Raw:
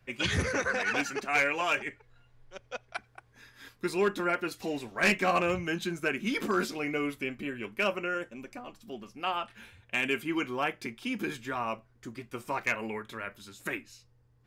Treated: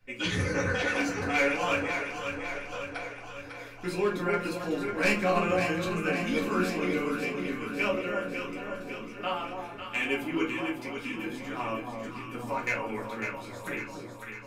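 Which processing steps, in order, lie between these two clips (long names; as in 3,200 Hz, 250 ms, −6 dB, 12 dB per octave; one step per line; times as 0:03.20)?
0:10.43–0:11.57: downward compressor, threshold −35 dBFS, peak gain reduction 9.5 dB
delay that swaps between a low-pass and a high-pass 275 ms, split 1,000 Hz, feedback 77%, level −4 dB
rectangular room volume 120 cubic metres, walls furnished, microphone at 2 metres
level −5.5 dB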